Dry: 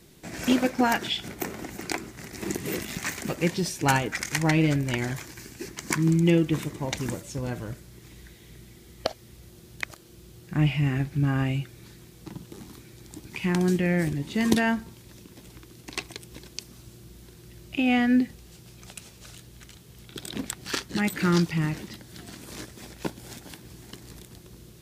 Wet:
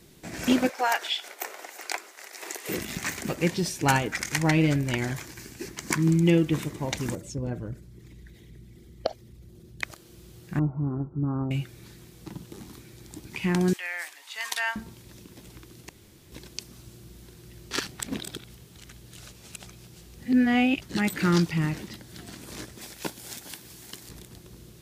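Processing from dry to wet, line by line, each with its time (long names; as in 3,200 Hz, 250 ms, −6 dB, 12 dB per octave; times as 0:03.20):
0:00.69–0:02.69: high-pass filter 520 Hz 24 dB per octave
0:07.15–0:09.82: spectral envelope exaggerated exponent 1.5
0:10.59–0:11.51: Chebyshev low-pass with heavy ripple 1,400 Hz, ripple 6 dB
0:13.73–0:14.76: high-pass filter 880 Hz 24 dB per octave
0:15.89–0:16.32: fill with room tone
0:17.71–0:20.82: reverse
0:22.81–0:24.09: spectral tilt +2 dB per octave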